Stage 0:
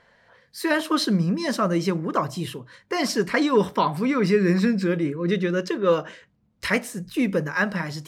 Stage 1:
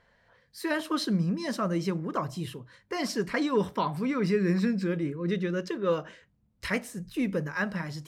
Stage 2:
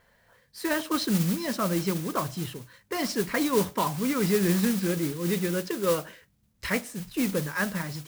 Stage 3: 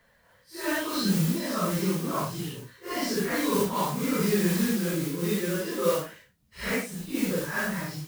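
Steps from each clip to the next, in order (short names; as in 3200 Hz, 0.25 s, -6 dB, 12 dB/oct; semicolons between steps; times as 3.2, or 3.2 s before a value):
low shelf 95 Hz +11.5 dB; gain -7.5 dB
modulation noise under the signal 11 dB; gain +1.5 dB
phase scrambler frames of 0.2 s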